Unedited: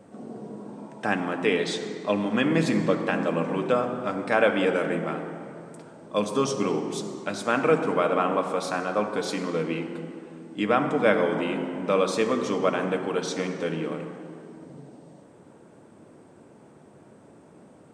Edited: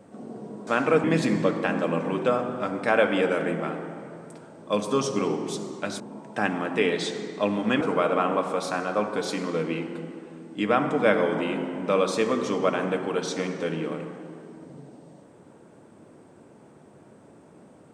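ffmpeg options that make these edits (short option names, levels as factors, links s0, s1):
-filter_complex "[0:a]asplit=5[s0][s1][s2][s3][s4];[s0]atrim=end=0.672[s5];[s1]atrim=start=7.438:end=7.812[s6];[s2]atrim=start=2.478:end=7.442[s7];[s3]atrim=start=0.668:end=2.482[s8];[s4]atrim=start=7.808[s9];[s5][s6]acrossfade=d=0.004:c1=hsin:c2=hsin[s10];[s10][s7]acrossfade=d=0.004:c1=hsin:c2=hsin[s11];[s11][s8]acrossfade=d=0.004:c1=hsin:c2=hsin[s12];[s12][s9]acrossfade=d=0.004:c1=hsin:c2=hsin"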